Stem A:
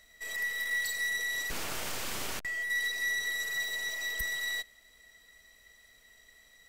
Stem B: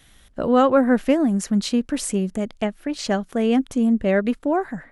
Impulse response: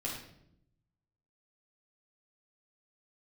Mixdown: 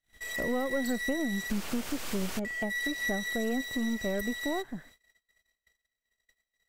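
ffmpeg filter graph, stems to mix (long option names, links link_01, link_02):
-filter_complex "[0:a]volume=1dB[link_01];[1:a]aeval=exprs='if(lt(val(0),0),0.447*val(0),val(0))':channel_layout=same,acrossover=split=810|2100[link_02][link_03][link_04];[link_02]acompressor=threshold=-23dB:ratio=4[link_05];[link_03]acompressor=threshold=-45dB:ratio=4[link_06];[link_04]acompressor=threshold=-59dB:ratio=4[link_07];[link_05][link_06][link_07]amix=inputs=3:normalize=0,volume=-5.5dB,asplit=2[link_08][link_09];[link_09]apad=whole_len=295006[link_10];[link_01][link_10]sidechaincompress=threshold=-33dB:ratio=8:attack=16:release=505[link_11];[link_11][link_08]amix=inputs=2:normalize=0,agate=range=-31dB:threshold=-54dB:ratio=16:detection=peak"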